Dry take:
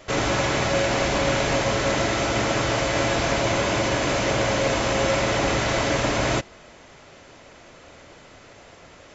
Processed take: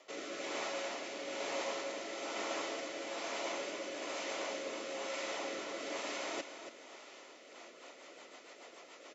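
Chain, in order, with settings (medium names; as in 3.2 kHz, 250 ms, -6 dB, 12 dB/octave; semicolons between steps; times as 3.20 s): high-pass 300 Hz 24 dB/octave; peaking EQ 410 Hz -2 dB 1.5 oct; band-stop 1.6 kHz, Q 7.6; reverse; compression 6:1, threshold -33 dBFS, peak gain reduction 12.5 dB; reverse; rotary cabinet horn 1.1 Hz, later 7 Hz, at 7.26 s; feedback delay 281 ms, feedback 31%, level -10 dB; trim -3 dB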